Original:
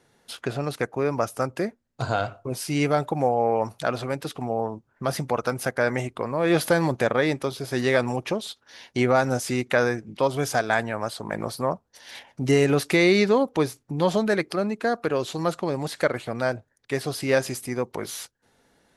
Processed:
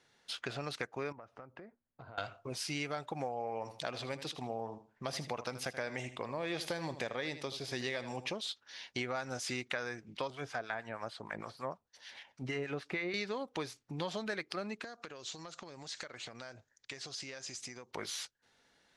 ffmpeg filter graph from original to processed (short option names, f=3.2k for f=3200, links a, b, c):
-filter_complex "[0:a]asettb=1/sr,asplit=3[a][b][c];[a]atrim=end=1.124[d];[b]atrim=start=1.12:end=2.18,asetpts=PTS-STARTPTS,afade=t=in:d=0.004:c=qsin,afade=t=out:st=1.056:d=0.004:c=qsin,lowpass=1.3k,acompressor=threshold=-38dB:ratio=6:attack=3.2:release=140:knee=1:detection=peak[e];[c]atrim=start=2.176[f];[d][e]acrossfade=d=0.004:c1=hsin:c2=qsin[g];[g][f]acrossfade=d=0.004:c1=qsin:c2=hsin,asettb=1/sr,asplit=3[h][i][j];[h]atrim=end=3.324[k];[i]atrim=start=3.32:end=8.34,asetpts=PTS-STARTPTS,afade=t=in:d=0.004:c=qsin,afade=t=out:st=5.016:d=0.004:c=qsin,equalizer=f=1.4k:w=2.5:g=-7,aecho=1:1:79|158|237:0.2|0.0479|0.0115,atrim=end_sample=221382[l];[j]atrim=start=8.336[m];[k][l]acrossfade=d=0.004:c1=hsin:c2=qsin[n];[n][m]acrossfade=d=0.004:c1=qsin:c2=hsin,asettb=1/sr,asplit=3[o][p][q];[o]atrim=end=10.304[r];[p]atrim=start=10.3:end=13.14,asetpts=PTS-STARTPTS,afade=t=in:d=0.004:c=qsin,afade=t=out:st=2.836:d=0.004:c=qsin,acrossover=split=2600[s][t];[t]acompressor=threshold=-46dB:ratio=4:attack=1:release=60[u];[s][u]amix=inputs=2:normalize=0,acrossover=split=970[v][w];[v]aeval=exprs='val(0)*(1-0.7/2+0.7/2*cos(2*PI*6.5*n/s))':c=same[x];[w]aeval=exprs='val(0)*(1-0.7/2-0.7/2*cos(2*PI*6.5*n/s))':c=same[y];[x][y]amix=inputs=2:normalize=0[z];[q]atrim=start=13.136[aa];[r][z]acrossfade=d=0.004:c1=hsin:c2=qsin[ab];[ab][aa]acrossfade=d=0.004:c1=qsin:c2=hsin,asettb=1/sr,asplit=3[ac][ad][ae];[ac]atrim=end=14.844[af];[ad]atrim=start=14.84:end=17.91,asetpts=PTS-STARTPTS,afade=t=in:d=0.004:c=qsin,afade=t=out:st=3.066:d=0.004:c=qsin,lowpass=f=6.8k:t=q:w=3.1,acompressor=threshold=-34dB:ratio=16:attack=3.2:release=140:knee=1:detection=peak[ag];[ae]atrim=start=17.906[ah];[af][ag]acrossfade=d=0.004:c1=hsin:c2=qsin[ai];[ai][ah]acrossfade=d=0.004:c1=qsin:c2=hsin,lowpass=5.6k,tiltshelf=f=1.2k:g=-6.5,acompressor=threshold=-28dB:ratio=6,volume=-6dB"